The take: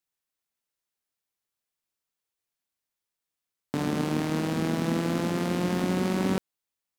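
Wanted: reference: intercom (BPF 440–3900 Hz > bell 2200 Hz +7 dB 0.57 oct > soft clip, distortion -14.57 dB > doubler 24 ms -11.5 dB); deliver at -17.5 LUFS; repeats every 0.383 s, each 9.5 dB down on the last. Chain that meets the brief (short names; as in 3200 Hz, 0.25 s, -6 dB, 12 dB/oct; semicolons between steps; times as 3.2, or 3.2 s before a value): BPF 440–3900 Hz; bell 2200 Hz +7 dB 0.57 oct; feedback echo 0.383 s, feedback 33%, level -9.5 dB; soft clip -23.5 dBFS; doubler 24 ms -11.5 dB; gain +16.5 dB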